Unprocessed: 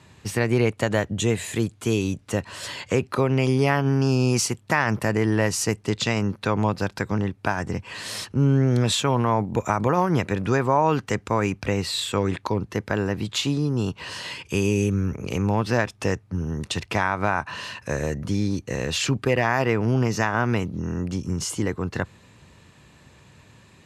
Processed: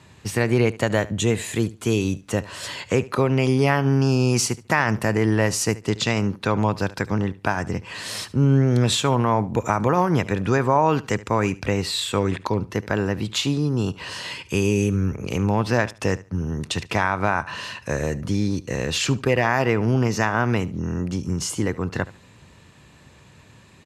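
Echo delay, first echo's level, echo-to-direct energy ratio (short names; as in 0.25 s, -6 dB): 73 ms, -19.0 dB, -19.0 dB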